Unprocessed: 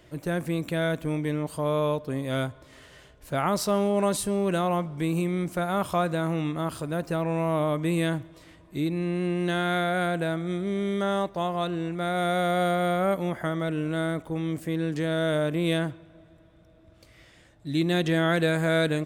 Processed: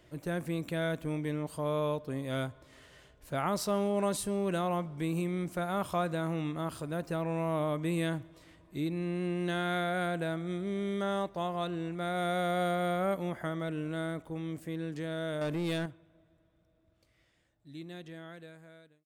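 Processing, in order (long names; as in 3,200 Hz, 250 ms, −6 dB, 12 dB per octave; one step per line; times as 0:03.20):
fade-out on the ending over 6.04 s
0:15.41–0:15.86: leveller curve on the samples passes 2
level −6 dB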